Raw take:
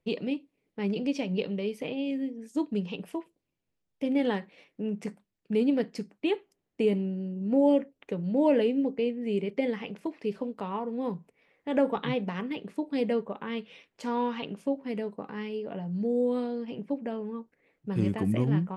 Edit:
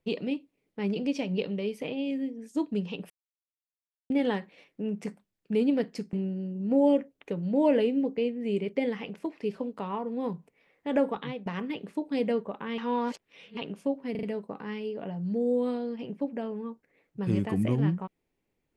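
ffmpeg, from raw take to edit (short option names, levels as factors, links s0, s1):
-filter_complex "[0:a]asplit=10[s0][s1][s2][s3][s4][s5][s6][s7][s8][s9];[s0]atrim=end=3.1,asetpts=PTS-STARTPTS,afade=t=out:st=3.096:d=0.004:c=hsin[s10];[s1]atrim=start=3.1:end=4.1,asetpts=PTS-STARTPTS,volume=0[s11];[s2]atrim=start=4.1:end=6.132,asetpts=PTS-STARTPTS,afade=t=in:d=0.004:c=hsin[s12];[s3]atrim=start=6.938:end=12.27,asetpts=PTS-STARTPTS,afade=t=out:st=4.842:d=0.49:silence=0.223872[s13];[s4]atrim=start=12.27:end=13.592,asetpts=PTS-STARTPTS,afade=t=in:d=0.004:c=hsin:silence=0.223872[s14];[s5]atrim=start=13.588:end=14.382,asetpts=PTS-STARTPTS,areverse[s15];[s6]atrim=start=14.378:end=14.962[s16];[s7]atrim=start=14.918:end=14.962[s17];[s8]atrim=start=14.918:end=14.962[s18];[s9]atrim=start=14.918[s19];[s10][s11][s12]concat=n=3:v=0:a=1[s20];[s13][s14]concat=n=2:v=0:a=1[s21];[s20][s21]acrossfade=d=0.004:c1=hsin:c2=hsin[s22];[s22][s15]acrossfade=d=0.004:c1=hsin:c2=hsin[s23];[s23][s16]acrossfade=d=0.004:c1=hsin:c2=hsin[s24];[s24][s17]acrossfade=d=0.004:c1=hsin:c2=hsin[s25];[s25][s18]acrossfade=d=0.004:c1=hsin:c2=hsin[s26];[s26][s19]acrossfade=d=0.004:c1=hsin:c2=hsin"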